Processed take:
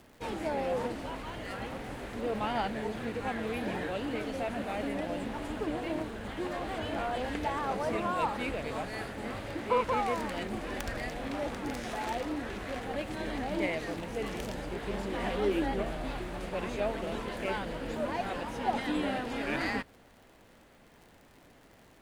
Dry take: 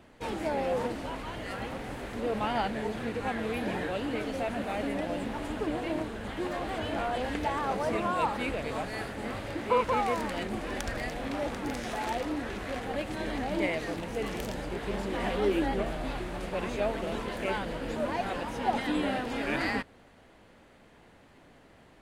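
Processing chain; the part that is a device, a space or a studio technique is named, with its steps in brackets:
record under a worn stylus (stylus tracing distortion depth 0.048 ms; surface crackle 74 per second −45 dBFS; pink noise bed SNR 35 dB)
level −2 dB

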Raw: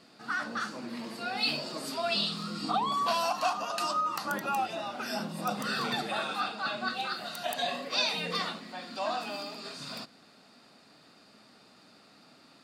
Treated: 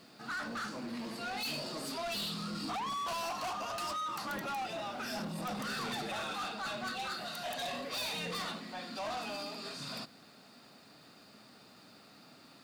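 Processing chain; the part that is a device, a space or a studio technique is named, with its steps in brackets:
open-reel tape (soft clipping −35 dBFS, distortion −7 dB; parametric band 110 Hz +4 dB 1.12 octaves; white noise bed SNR 34 dB)

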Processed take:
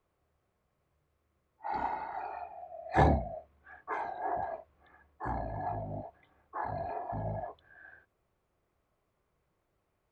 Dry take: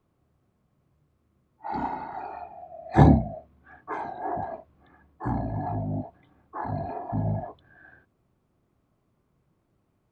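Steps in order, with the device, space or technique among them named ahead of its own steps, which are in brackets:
octave-band graphic EQ 125/250/500/2,000 Hz −7/−10/+3/+4 dB
parallel distortion (in parallel at −13 dB: hard clipping −19 dBFS, distortion −10 dB)
on the sum: level −5.5 dB

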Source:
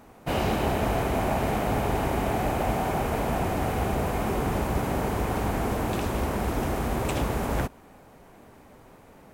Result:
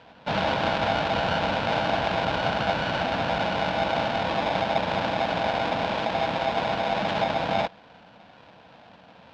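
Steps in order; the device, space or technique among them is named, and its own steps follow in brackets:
ring modulator pedal into a guitar cabinet (ring modulator with a square carrier 730 Hz; loudspeaker in its box 88–4,000 Hz, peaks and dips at 190 Hz +6 dB, 380 Hz −10 dB, 710 Hz +4 dB, 1,200 Hz −8 dB, 2,000 Hz −6 dB)
level +2 dB

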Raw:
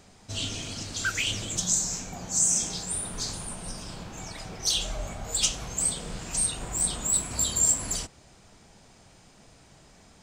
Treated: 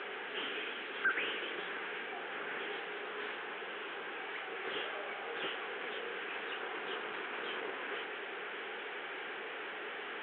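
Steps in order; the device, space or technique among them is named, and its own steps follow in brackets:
digital answering machine (band-pass filter 400–3,100 Hz; linear delta modulator 16 kbit/s, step −38 dBFS; loudspeaker in its box 400–3,700 Hz, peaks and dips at 410 Hz +9 dB, 640 Hz −10 dB, 990 Hz −5 dB, 1,600 Hz +5 dB, 3,300 Hz +4 dB)
level +2 dB

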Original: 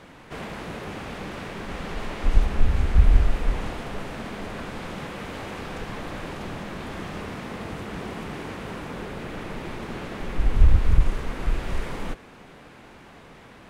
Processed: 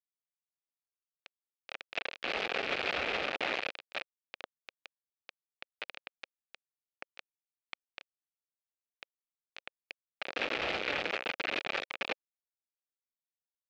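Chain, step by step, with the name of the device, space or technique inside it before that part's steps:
hand-held game console (bit reduction 4 bits; loudspeaker in its box 480–4,100 Hz, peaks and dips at 540 Hz +3 dB, 1,000 Hz −8 dB, 2,500 Hz +7 dB)
level −4.5 dB

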